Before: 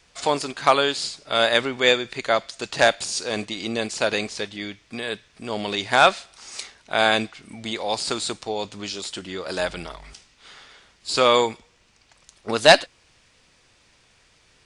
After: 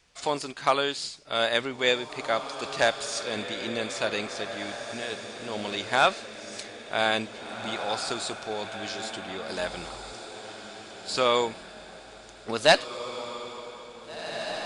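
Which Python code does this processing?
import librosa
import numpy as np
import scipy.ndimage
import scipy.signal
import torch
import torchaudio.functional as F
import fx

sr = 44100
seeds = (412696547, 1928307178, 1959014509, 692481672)

y = fx.echo_diffused(x, sr, ms=1929, feedback_pct=42, wet_db=-9.0)
y = y * librosa.db_to_amplitude(-6.0)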